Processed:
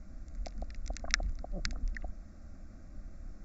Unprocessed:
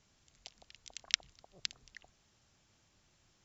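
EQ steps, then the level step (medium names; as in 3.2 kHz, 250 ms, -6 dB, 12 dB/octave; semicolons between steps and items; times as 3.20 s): tilt EQ -4.5 dB/octave; static phaser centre 620 Hz, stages 8; band-stop 1.7 kHz, Q 17; +14.0 dB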